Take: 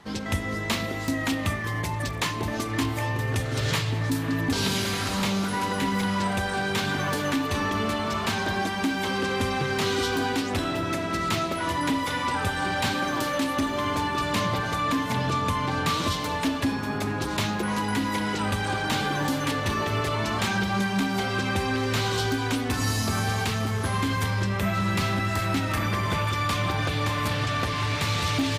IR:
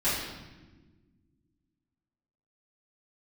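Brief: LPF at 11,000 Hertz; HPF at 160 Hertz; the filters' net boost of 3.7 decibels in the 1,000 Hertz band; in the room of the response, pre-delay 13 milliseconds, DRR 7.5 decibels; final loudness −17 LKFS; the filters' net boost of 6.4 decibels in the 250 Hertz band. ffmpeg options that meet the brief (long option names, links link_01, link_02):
-filter_complex "[0:a]highpass=160,lowpass=11000,equalizer=frequency=250:width_type=o:gain=8.5,equalizer=frequency=1000:width_type=o:gain=4,asplit=2[link_01][link_02];[1:a]atrim=start_sample=2205,adelay=13[link_03];[link_02][link_03]afir=irnorm=-1:irlink=0,volume=-19dB[link_04];[link_01][link_04]amix=inputs=2:normalize=0,volume=5.5dB"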